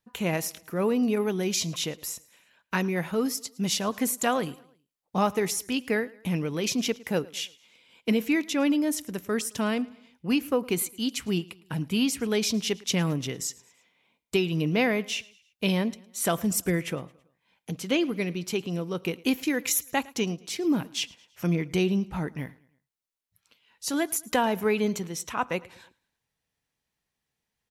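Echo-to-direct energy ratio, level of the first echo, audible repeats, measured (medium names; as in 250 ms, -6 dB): -22.0 dB, -23.0 dB, 2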